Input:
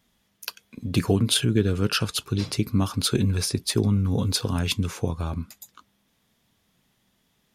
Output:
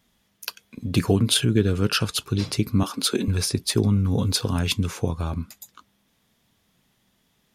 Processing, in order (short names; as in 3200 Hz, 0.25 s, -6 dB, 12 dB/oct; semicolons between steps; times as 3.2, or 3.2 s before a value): 2.83–3.28 HPF 220 Hz 24 dB/oct; gain +1.5 dB